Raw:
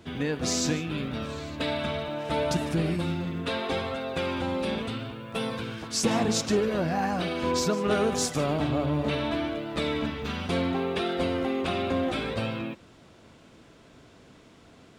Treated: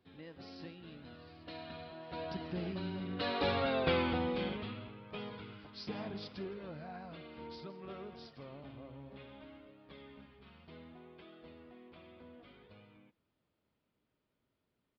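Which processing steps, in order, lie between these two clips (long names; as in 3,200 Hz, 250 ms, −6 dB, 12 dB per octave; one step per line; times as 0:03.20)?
source passing by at 0:03.76, 27 m/s, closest 8.2 metres
downsampling to 11,025 Hz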